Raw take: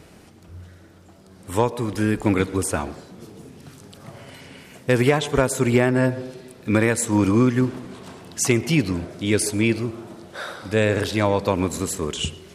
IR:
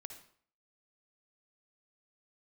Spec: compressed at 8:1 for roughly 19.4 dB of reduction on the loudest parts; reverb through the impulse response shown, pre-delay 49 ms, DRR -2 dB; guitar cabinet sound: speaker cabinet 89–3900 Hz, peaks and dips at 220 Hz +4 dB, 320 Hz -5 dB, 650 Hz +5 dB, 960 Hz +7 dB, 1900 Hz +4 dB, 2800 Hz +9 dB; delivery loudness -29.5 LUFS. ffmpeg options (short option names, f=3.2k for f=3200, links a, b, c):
-filter_complex "[0:a]acompressor=threshold=-34dB:ratio=8,asplit=2[a][b];[1:a]atrim=start_sample=2205,adelay=49[c];[b][c]afir=irnorm=-1:irlink=0,volume=7dB[d];[a][d]amix=inputs=2:normalize=0,highpass=89,equalizer=f=220:t=q:w=4:g=4,equalizer=f=320:t=q:w=4:g=-5,equalizer=f=650:t=q:w=4:g=5,equalizer=f=960:t=q:w=4:g=7,equalizer=f=1.9k:t=q:w=4:g=4,equalizer=f=2.8k:t=q:w=4:g=9,lowpass=f=3.9k:w=0.5412,lowpass=f=3.9k:w=1.3066,volume=4.5dB"